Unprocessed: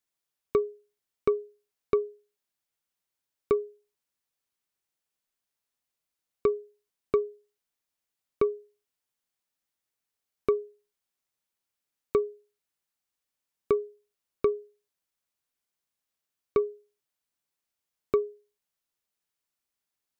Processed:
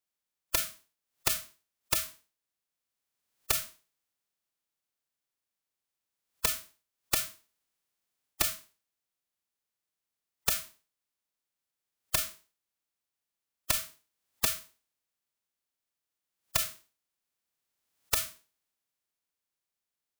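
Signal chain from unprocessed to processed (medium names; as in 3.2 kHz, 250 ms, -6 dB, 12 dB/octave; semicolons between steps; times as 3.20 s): spectral contrast reduction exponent 0.1; formant-preserving pitch shift +7.5 st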